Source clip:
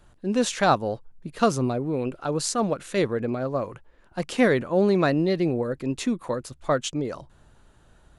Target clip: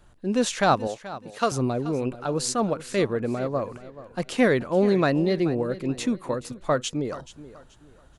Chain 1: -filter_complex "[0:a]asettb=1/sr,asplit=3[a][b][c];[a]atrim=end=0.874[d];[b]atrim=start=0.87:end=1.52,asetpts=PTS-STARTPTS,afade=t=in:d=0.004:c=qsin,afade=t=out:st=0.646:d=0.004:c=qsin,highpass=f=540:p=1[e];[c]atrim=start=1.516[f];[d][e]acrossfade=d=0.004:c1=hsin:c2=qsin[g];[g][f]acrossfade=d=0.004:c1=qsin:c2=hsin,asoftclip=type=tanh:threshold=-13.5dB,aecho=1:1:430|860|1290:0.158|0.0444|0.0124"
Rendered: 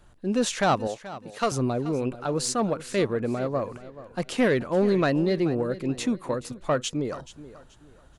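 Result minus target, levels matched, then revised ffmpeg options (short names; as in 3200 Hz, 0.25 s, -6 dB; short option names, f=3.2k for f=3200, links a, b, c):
soft clip: distortion +20 dB
-filter_complex "[0:a]asettb=1/sr,asplit=3[a][b][c];[a]atrim=end=0.874[d];[b]atrim=start=0.87:end=1.52,asetpts=PTS-STARTPTS,afade=t=in:d=0.004:c=qsin,afade=t=out:st=0.646:d=0.004:c=qsin,highpass=f=540:p=1[e];[c]atrim=start=1.516[f];[d][e]acrossfade=d=0.004:c1=hsin:c2=qsin[g];[g][f]acrossfade=d=0.004:c1=qsin:c2=hsin,asoftclip=type=tanh:threshold=-1.5dB,aecho=1:1:430|860|1290:0.158|0.0444|0.0124"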